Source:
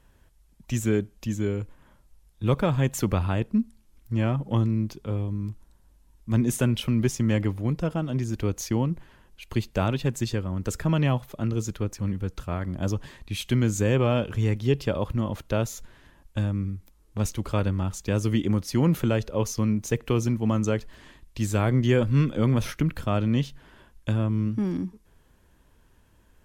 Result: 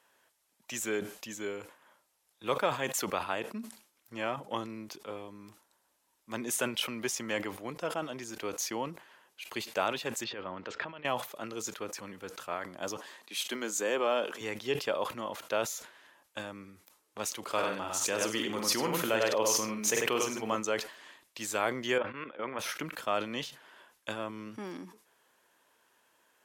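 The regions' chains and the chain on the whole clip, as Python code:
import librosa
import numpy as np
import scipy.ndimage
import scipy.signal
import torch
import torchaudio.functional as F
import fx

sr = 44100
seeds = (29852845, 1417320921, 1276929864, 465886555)

y = fx.chain(x, sr, fx.lowpass(hz=3700.0, slope=24),
    fx.over_compress(threshold_db=-28.0, ratio=-0.5), at=(10.24, 11.05))
y = fx.chain(y, sr, fx.highpass(hz=200.0, slope=24),
    fx.peak_eq(hz=2400.0, db=-3.5, octaves=0.72), at=(12.97, 14.41))
y = fx.chain(y, sr, fx.echo_multitap(ms=(46, 98, 149), db=(-7.5, -5.0, -17.0)),
    fx.sustainer(db_per_s=26.0), at=(17.43, 20.56))
y = fx.chain(y, sr, fx.low_shelf(hz=250.0, db=-11.0),
    fx.level_steps(step_db=14),
    fx.lowpass(hz=2600.0, slope=24), at=(21.98, 22.59))
y = scipy.signal.sosfilt(scipy.signal.butter(2, 590.0, 'highpass', fs=sr, output='sos'), y)
y = fx.sustainer(y, sr, db_per_s=120.0)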